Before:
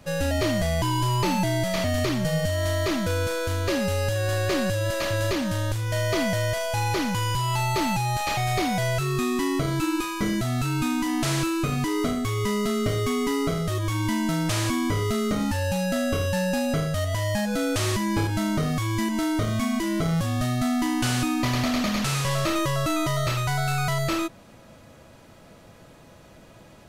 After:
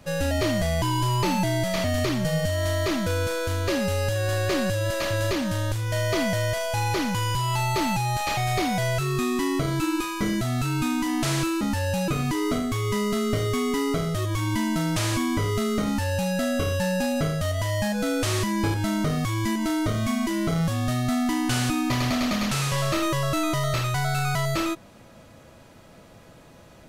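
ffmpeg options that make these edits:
-filter_complex "[0:a]asplit=3[a][b][c];[a]atrim=end=11.612[d];[b]atrim=start=15.388:end=15.862[e];[c]atrim=start=11.608[f];[d][e]acrossfade=d=0.004:c1=hsin:c2=hsin[g];[g][f]acrossfade=d=0.004:c1=hsin:c2=hsin"

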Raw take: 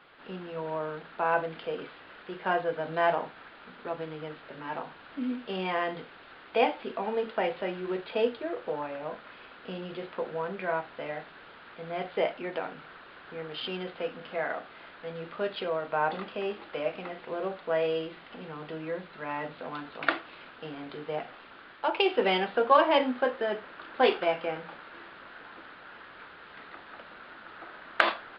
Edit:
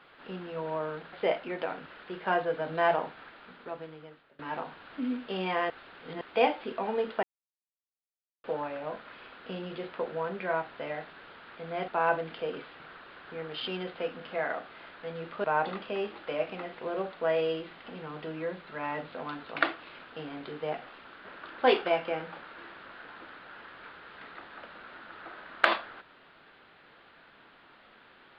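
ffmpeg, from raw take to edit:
-filter_complex "[0:a]asplit=12[a][b][c][d][e][f][g][h][i][j][k][l];[a]atrim=end=1.132[m];[b]atrim=start=12.068:end=12.802[n];[c]atrim=start=2.048:end=4.58,asetpts=PTS-STARTPTS,afade=t=out:st=1.362:d=1.17:silence=0.0668344[o];[d]atrim=start=4.58:end=5.892,asetpts=PTS-STARTPTS,afade=t=in:d=0.004:c=hsin:silence=0.0668344[p];[e]atrim=start=5.888:end=6.402,asetpts=PTS-STARTPTS,areverse[q];[f]atrim=start=6.398:end=7.42,asetpts=PTS-STARTPTS,afade=t=out:st=1.018:d=0.004:c=hsin[r];[g]atrim=start=7.42:end=8.63,asetpts=PTS-STARTPTS,volume=0[s];[h]atrim=start=8.63:end=12.072,asetpts=PTS-STARTPTS,afade=t=in:d=0.004:c=hsin[t];[i]atrim=start=1.128:end=2.052[u];[j]atrim=start=12.798:end=15.442[v];[k]atrim=start=15.898:end=21.712[w];[l]atrim=start=23.608[x];[m][n]acrossfade=d=0.004:c1=hsin:c2=hsin[y];[o][p]concat=n=2:v=0:a=1[z];[y][z]acrossfade=d=0.004:c1=hsin:c2=hsin[aa];[aa][q]acrossfade=d=0.004:c1=hsin:c2=hsin[ab];[r][s][t]concat=n=3:v=0:a=1[ac];[ab][ac]acrossfade=d=0.004:c1=hsin:c2=hsin[ad];[ad][u]acrossfade=d=0.004:c1=hsin:c2=hsin[ae];[ae][v]acrossfade=d=0.004:c1=hsin:c2=hsin[af];[af][w]acrossfade=d=0.004:c1=hsin:c2=hsin[ag];[ag][x]acrossfade=d=0.004:c1=hsin:c2=hsin"

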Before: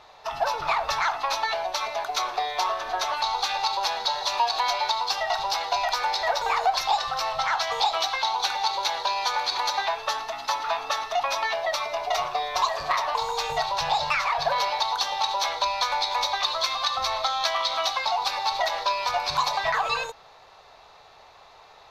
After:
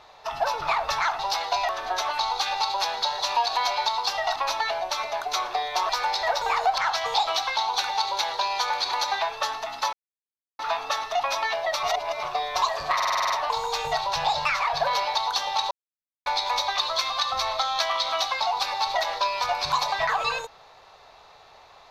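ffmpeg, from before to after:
-filter_complex "[0:a]asplit=18[a][b][c][d][e][f][g][h][i][j][k][l][m][n][o][p][q][r];[a]atrim=end=1.192[s];[b]atrim=start=5.388:end=5.892[t];[c]atrim=start=2.718:end=5.392[u];[d]atrim=start=1.188:end=2.722[v];[e]atrim=start=5.888:end=6.782[w];[f]atrim=start=7.438:end=10.59,asetpts=PTS-STARTPTS,afade=t=out:st=3.148:d=0.004:c=hsin,apad=pad_dur=0.66[x];[g]atrim=start=10.59:end=11.832,asetpts=PTS-STARTPTS,afade=t=in:d=0.004:c=hsin[y];[h]atrim=start=11.828:end=12.232,asetpts=PTS-STARTPTS,areverse[z];[i]atrim=start=12.228:end=13.002[aa];[j]atrim=start=12.948:end=13.002[ab];[k]atrim=start=12.948:end=13.002[ac];[l]atrim=start=12.948:end=13.002[ad];[m]atrim=start=12.948:end=13.002[ae];[n]atrim=start=12.948:end=13.002[af];[o]atrim=start=12.948:end=13.002[ag];[p]atrim=start=12.948:end=15.36,asetpts=PTS-STARTPTS,afade=t=out:st=2.408:d=0.004:c=hsin[ah];[q]atrim=start=15.36:end=15.91,asetpts=PTS-STARTPTS,volume=0[ai];[r]atrim=start=15.91,asetpts=PTS-STARTPTS,afade=t=in:d=0.004:c=hsin[aj];[s][t]acrossfade=d=0.004:c1=hsin:c2=hsin[ak];[ak][u]acrossfade=d=0.004:c1=hsin:c2=hsin[al];[al][v]acrossfade=d=0.004:c1=hsin:c2=hsin[am];[am][w]acrossfade=d=0.004:c1=hsin:c2=hsin[an];[x][y]concat=n=2:v=0:a=1[ao];[an][ao]acrossfade=d=0.004:c1=hsin:c2=hsin[ap];[ap][z]acrossfade=d=0.004:c1=hsin:c2=hsin[aq];[aq][aa]acrossfade=d=0.004:c1=hsin:c2=hsin[ar];[ar][ab]acrossfade=d=0.004:c1=hsin:c2=hsin[as];[as][ac]acrossfade=d=0.004:c1=hsin:c2=hsin[at];[at][ad]acrossfade=d=0.004:c1=hsin:c2=hsin[au];[au][ae]acrossfade=d=0.004:c1=hsin:c2=hsin[av];[av][af]acrossfade=d=0.004:c1=hsin:c2=hsin[aw];[aw][ag]acrossfade=d=0.004:c1=hsin:c2=hsin[ax];[ah][ai][aj]concat=n=3:v=0:a=1[ay];[ax][ay]acrossfade=d=0.004:c1=hsin:c2=hsin"

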